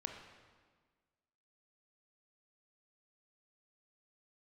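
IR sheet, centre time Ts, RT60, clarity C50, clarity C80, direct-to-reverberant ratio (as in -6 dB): 41 ms, 1.5 s, 5.0 dB, 6.5 dB, 3.0 dB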